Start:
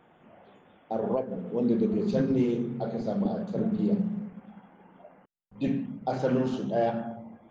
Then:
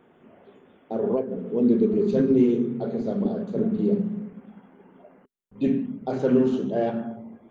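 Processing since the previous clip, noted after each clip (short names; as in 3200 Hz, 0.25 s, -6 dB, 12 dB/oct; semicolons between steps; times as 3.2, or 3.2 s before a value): thirty-one-band EQ 250 Hz +7 dB, 400 Hz +10 dB, 800 Hz -4 dB, 5000 Hz -6 dB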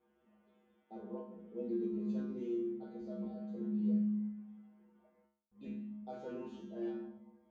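resonator 70 Hz, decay 0.5 s, harmonics odd, mix 100%; gain -4.5 dB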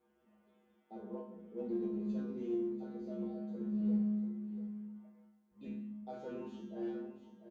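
in parallel at -11 dB: one-sided clip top -39 dBFS; on the sum: echo 0.691 s -11 dB; gain -2 dB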